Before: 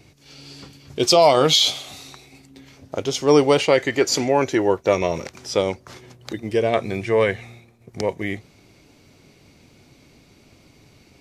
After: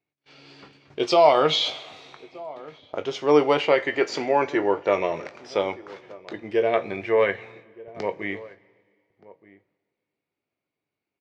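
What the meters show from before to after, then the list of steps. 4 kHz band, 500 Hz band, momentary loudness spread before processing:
-7.0 dB, -2.5 dB, 18 LU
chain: HPF 540 Hz 6 dB/oct; gate -51 dBFS, range -28 dB; LPF 2500 Hz 12 dB/oct; doubler 20 ms -12 dB; outdoor echo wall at 210 m, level -20 dB; two-slope reverb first 0.3 s, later 2.1 s, from -18 dB, DRR 12.5 dB

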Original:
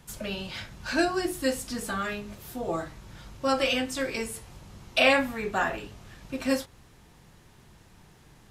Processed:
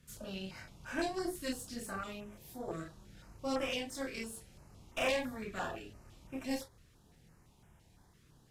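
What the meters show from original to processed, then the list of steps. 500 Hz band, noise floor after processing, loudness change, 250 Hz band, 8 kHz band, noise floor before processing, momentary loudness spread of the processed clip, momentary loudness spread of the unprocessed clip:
-10.5 dB, -65 dBFS, -11.0 dB, -9.5 dB, -8.5 dB, -56 dBFS, 17 LU, 20 LU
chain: chorus voices 2, 0.28 Hz, delay 29 ms, depth 3.7 ms; tube stage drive 24 dB, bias 0.7; stepped notch 5.9 Hz 840–4300 Hz; gain -2 dB

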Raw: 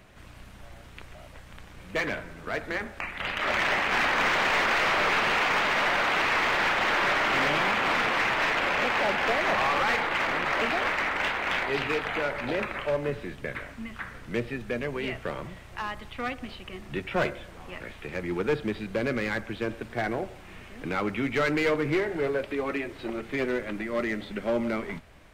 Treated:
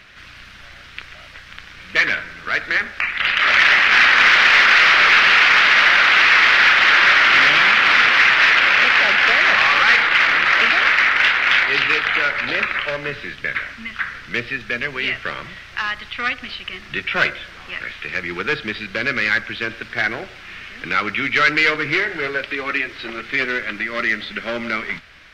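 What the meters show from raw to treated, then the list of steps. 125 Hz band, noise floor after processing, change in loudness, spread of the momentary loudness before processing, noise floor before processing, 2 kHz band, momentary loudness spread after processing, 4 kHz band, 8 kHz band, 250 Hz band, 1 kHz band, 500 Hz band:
0.0 dB, -41 dBFS, +12.5 dB, 13 LU, -47 dBFS, +14.5 dB, 16 LU, +14.5 dB, n/a, 0.0 dB, +7.5 dB, 0.0 dB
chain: band shelf 2700 Hz +14.5 dB 2.5 oct

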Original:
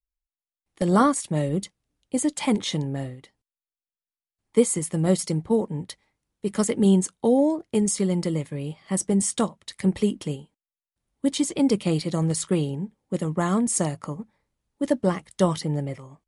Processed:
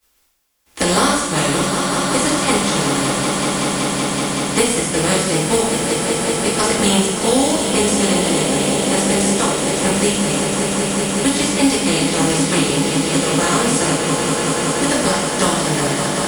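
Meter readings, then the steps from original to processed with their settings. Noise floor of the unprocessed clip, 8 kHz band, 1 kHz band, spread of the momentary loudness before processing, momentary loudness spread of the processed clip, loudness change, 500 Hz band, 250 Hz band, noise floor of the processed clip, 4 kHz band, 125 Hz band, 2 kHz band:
under -85 dBFS, +13.0 dB, +12.0 dB, 12 LU, 3 LU, +8.0 dB, +8.0 dB, +6.0 dB, -22 dBFS, +17.5 dB, +4.5 dB, +18.5 dB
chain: spectral contrast lowered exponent 0.48; one-sided clip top -12 dBFS; on a send: swelling echo 0.189 s, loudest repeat 5, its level -11 dB; on the sum: non-linear reverb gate 0.25 s falling, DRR -6 dB; three-band squash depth 70%; gain -1.5 dB

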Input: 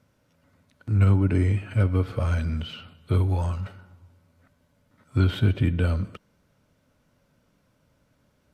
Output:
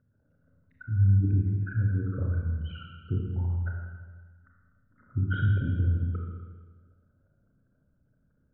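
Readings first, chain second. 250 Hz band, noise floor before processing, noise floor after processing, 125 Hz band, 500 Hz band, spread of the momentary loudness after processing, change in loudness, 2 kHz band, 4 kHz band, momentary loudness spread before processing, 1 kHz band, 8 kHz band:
-7.0 dB, -68 dBFS, -70 dBFS, -2.5 dB, -13.0 dB, 19 LU, -4.0 dB, -3.0 dB, under -10 dB, 15 LU, -9.5 dB, n/a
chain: formant sharpening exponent 3; synth low-pass 1600 Hz, resonance Q 7.6; Schroeder reverb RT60 1.5 s, combs from 27 ms, DRR -1.5 dB; gain -6 dB

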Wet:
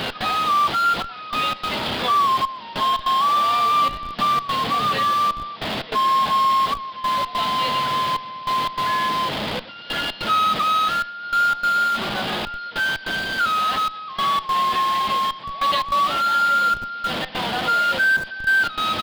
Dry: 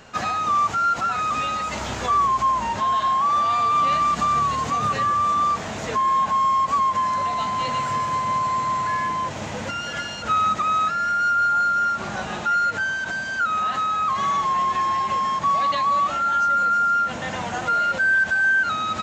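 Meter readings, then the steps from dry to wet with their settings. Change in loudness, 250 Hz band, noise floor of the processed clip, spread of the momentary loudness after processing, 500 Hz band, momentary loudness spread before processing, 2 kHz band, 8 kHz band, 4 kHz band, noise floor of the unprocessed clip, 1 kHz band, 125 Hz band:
+0.5 dB, +1.5 dB, -37 dBFS, 8 LU, +2.0 dB, 8 LU, +0.5 dB, -1.5 dB, +9.5 dB, -31 dBFS, 0.0 dB, -2.0 dB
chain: delta modulation 64 kbps, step -23 dBFS; HPF 160 Hz 12 dB/oct; bell 3300 Hz +9 dB 0.53 oct; step gate "x.xxxxxxxx...x" 147 bpm -12 dB; downsampling 11025 Hz; speakerphone echo 0.12 s, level -24 dB; in parallel at -11.5 dB: Schmitt trigger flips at -25 dBFS

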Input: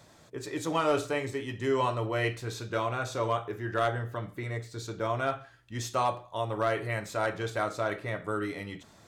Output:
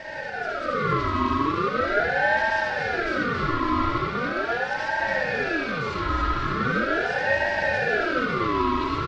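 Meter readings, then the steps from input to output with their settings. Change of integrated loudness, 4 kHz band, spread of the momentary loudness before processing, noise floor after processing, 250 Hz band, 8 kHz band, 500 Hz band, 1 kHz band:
+7.5 dB, +6.0 dB, 9 LU, -31 dBFS, +8.0 dB, n/a, +4.0 dB, +8.0 dB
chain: infinite clipping; bell 1800 Hz -12 dB 1.3 oct; comb 3.1 ms, depth 98%; AGC gain up to 6 dB; speaker cabinet 310–3400 Hz, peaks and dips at 380 Hz +8 dB, 600 Hz +6 dB, 1500 Hz +7 dB; thin delay 0.278 s, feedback 77%, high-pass 1900 Hz, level -4 dB; digital reverb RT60 2.7 s, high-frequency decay 0.25×, pre-delay 30 ms, DRR -3 dB; ring modulator with a swept carrier 950 Hz, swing 30%, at 0.4 Hz; gain -4.5 dB

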